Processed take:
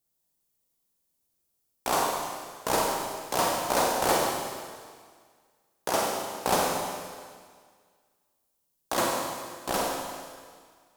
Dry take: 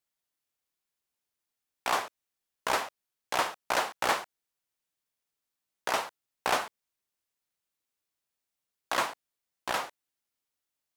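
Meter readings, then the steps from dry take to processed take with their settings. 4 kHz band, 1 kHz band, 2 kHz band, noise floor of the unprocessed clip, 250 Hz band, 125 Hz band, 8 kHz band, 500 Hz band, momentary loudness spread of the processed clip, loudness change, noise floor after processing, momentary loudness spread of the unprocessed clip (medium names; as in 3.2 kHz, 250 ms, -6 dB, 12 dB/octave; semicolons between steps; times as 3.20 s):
+3.0 dB, +4.0 dB, -0.5 dB, under -85 dBFS, +11.0 dB, +12.5 dB, +8.5 dB, +8.0 dB, 15 LU, +3.0 dB, -76 dBFS, 13 LU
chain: peaking EQ 2 kHz -14.5 dB 2.8 oct; Schroeder reverb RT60 1.8 s, combs from 33 ms, DRR -2 dB; trim +9 dB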